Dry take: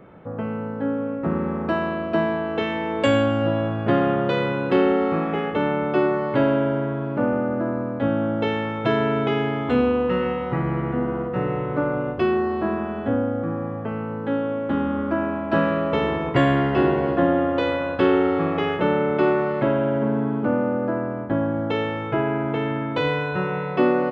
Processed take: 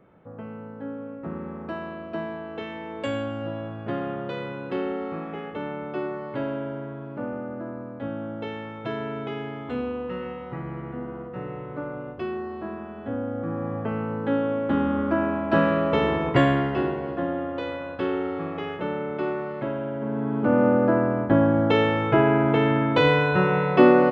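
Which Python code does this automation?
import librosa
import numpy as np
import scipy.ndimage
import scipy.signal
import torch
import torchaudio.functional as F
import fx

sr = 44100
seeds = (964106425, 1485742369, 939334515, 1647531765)

y = fx.gain(x, sr, db=fx.line((12.96, -10.0), (13.76, 0.0), (16.36, 0.0), (16.99, -8.5), (19.98, -8.5), (20.66, 4.0)))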